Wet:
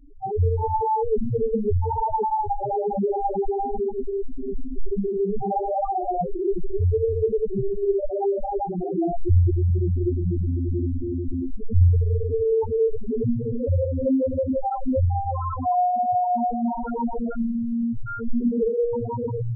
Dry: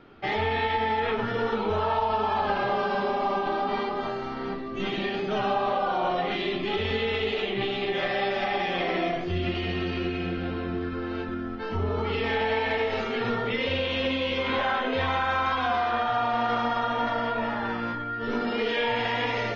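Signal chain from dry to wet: tilt EQ -3 dB/octave; loudest bins only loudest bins 2; trim +6 dB

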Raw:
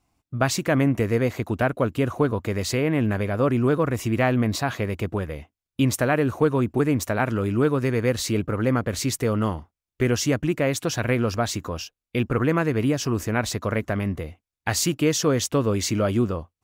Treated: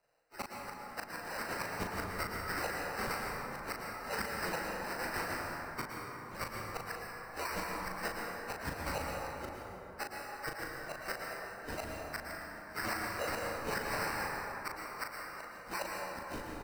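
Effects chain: spectrum inverted on a logarithmic axis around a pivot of 1.9 kHz; steep high-pass 500 Hz 48 dB/octave; treble shelf 8.1 kHz -10.5 dB; in parallel at -2.5 dB: compressor with a negative ratio -37 dBFS, ratio -1; on the sum: sample-and-hold 13×; inverted gate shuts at -21 dBFS, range -29 dB; doubling 38 ms -6 dB; reverberation RT60 3.5 s, pre-delay 102 ms, DRR -1.5 dB; trim -6.5 dB

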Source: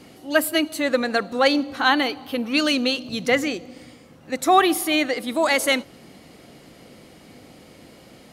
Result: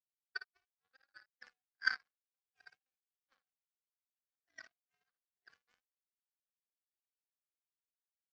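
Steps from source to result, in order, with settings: every band turned upside down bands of 1 kHz; band-pass filter 1.6 kHz, Q 15; early reflections 24 ms -14.5 dB, 55 ms -3.5 dB; power-law waveshaper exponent 3

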